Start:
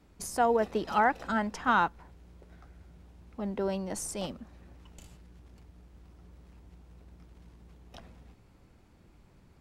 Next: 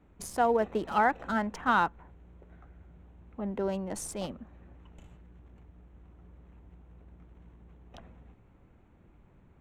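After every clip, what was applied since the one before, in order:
adaptive Wiener filter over 9 samples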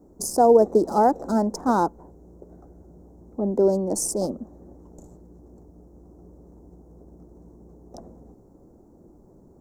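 drawn EQ curve 110 Hz 0 dB, 350 Hz +13 dB, 640 Hz +8 dB, 900 Hz +3 dB, 2,900 Hz −29 dB, 5,000 Hz +11 dB
level +2 dB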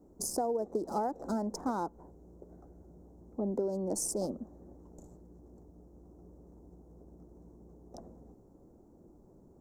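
downward compressor 12 to 1, threshold −22 dBFS, peak gain reduction 12.5 dB
level −6.5 dB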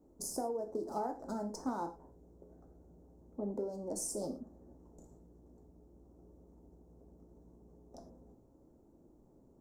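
reverb whose tail is shaped and stops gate 140 ms falling, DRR 4 dB
level −6 dB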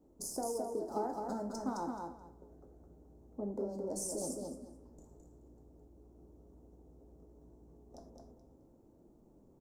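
repeating echo 214 ms, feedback 19%, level −4 dB
level −1 dB

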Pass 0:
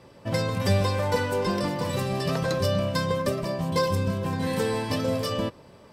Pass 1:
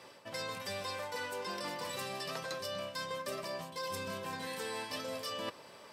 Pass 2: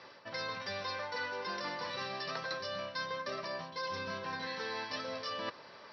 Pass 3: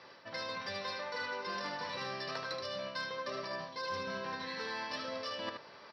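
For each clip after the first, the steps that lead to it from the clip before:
high-pass filter 1,200 Hz 6 dB per octave; reversed playback; downward compressor 12 to 1, threshold −41 dBFS, peak gain reduction 17 dB; reversed playback; level +4.5 dB
Chebyshev low-pass with heavy ripple 5,800 Hz, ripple 6 dB; level +4.5 dB
single-tap delay 76 ms −5.5 dB; harmonic generator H 3 −24 dB, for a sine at −24 dBFS

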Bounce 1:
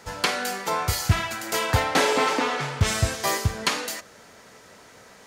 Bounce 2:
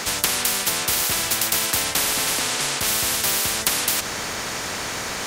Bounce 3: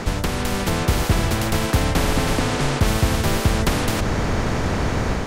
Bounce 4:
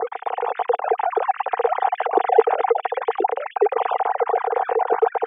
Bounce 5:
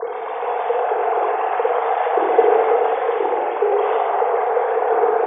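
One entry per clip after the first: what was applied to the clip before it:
every bin compressed towards the loudest bin 10 to 1; level +7.5 dB
spectral tilt −4.5 dB per octave; automatic gain control gain up to 4 dB
three sine waves on the formant tracks; pair of resonant band-passes 590 Hz, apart 0.72 octaves; level +6.5 dB
rectangular room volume 2,600 cubic metres, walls mixed, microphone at 5.3 metres; level −5 dB

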